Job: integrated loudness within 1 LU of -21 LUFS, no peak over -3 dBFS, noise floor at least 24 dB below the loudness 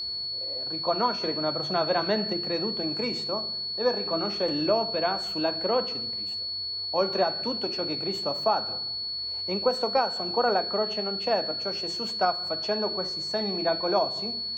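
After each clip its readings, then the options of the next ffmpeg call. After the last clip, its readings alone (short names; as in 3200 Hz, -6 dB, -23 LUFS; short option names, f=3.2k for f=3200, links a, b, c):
steady tone 4400 Hz; tone level -30 dBFS; loudness -27.0 LUFS; peak -13.0 dBFS; loudness target -21.0 LUFS
-> -af "bandreject=f=4.4k:w=30"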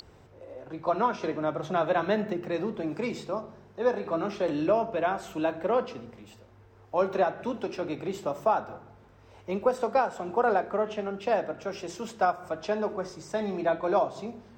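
steady tone none; loudness -29.5 LUFS; peak -14.0 dBFS; loudness target -21.0 LUFS
-> -af "volume=8.5dB"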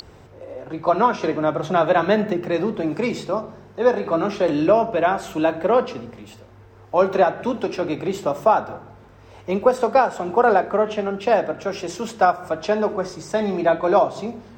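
loudness -21.0 LUFS; peak -5.5 dBFS; noise floor -46 dBFS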